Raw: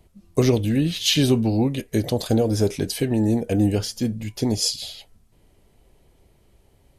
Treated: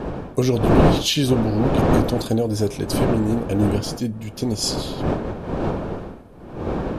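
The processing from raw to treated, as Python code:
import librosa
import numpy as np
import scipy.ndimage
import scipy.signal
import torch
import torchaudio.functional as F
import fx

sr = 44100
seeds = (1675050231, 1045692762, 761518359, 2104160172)

y = fx.dmg_wind(x, sr, seeds[0], corner_hz=450.0, level_db=-22.0)
y = fx.notch(y, sr, hz=2000.0, q=11.0)
y = y * 10.0 ** (-1.0 / 20.0)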